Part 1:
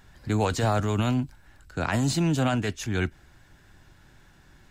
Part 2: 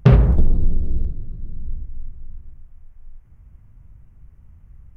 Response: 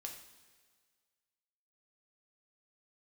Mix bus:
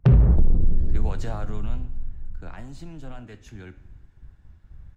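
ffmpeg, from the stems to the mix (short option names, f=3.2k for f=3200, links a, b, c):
-filter_complex "[0:a]acompressor=threshold=-26dB:ratio=6,flanger=delay=5.3:depth=9.3:regen=86:speed=0.51:shape=sinusoidal,adelay=650,volume=-1.5dB,afade=t=out:st=1.38:d=0.45:silence=0.421697,asplit=2[a][b];[b]volume=-3.5dB[c];[1:a]agate=range=-13dB:threshold=-43dB:ratio=16:detection=peak,volume=0.5dB[d];[2:a]atrim=start_sample=2205[e];[c][e]afir=irnorm=-1:irlink=0[f];[a][d][f]amix=inputs=3:normalize=0,highshelf=f=3k:g=-8.5,acrossover=split=190[g][h];[h]acompressor=threshold=-24dB:ratio=10[i];[g][i]amix=inputs=2:normalize=0,asoftclip=type=tanh:threshold=-8dB"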